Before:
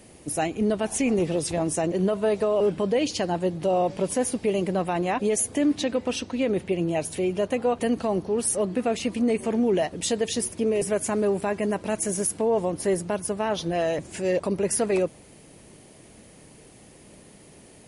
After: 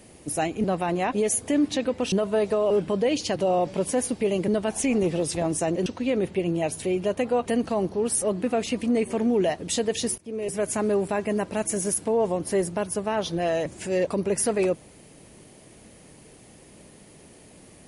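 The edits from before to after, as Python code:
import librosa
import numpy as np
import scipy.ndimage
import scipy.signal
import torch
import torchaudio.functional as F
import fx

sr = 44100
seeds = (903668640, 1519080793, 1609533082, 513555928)

y = fx.edit(x, sr, fx.swap(start_s=0.64, length_s=1.38, other_s=4.71, other_length_s=1.48),
    fx.cut(start_s=3.26, length_s=0.33),
    fx.fade_in_from(start_s=10.51, length_s=0.52, floor_db=-21.5), tone=tone)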